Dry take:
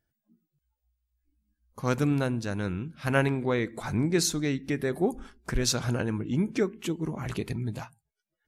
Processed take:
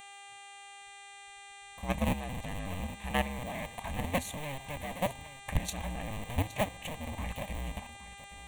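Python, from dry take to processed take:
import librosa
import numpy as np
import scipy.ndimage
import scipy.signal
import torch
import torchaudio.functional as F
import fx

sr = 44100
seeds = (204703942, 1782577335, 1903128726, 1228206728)

y = fx.cycle_switch(x, sr, every=2, mode='inverted')
y = fx.level_steps(y, sr, step_db=12)
y = fx.dmg_buzz(y, sr, base_hz=400.0, harmonics=23, level_db=-47.0, tilt_db=-3, odd_only=False)
y = fx.fixed_phaser(y, sr, hz=1400.0, stages=6)
y = y + 10.0 ** (-15.0 / 20.0) * np.pad(y, (int(817 * sr / 1000.0), 0))[:len(y)]
y = F.gain(torch.from_numpy(y), 1.5).numpy()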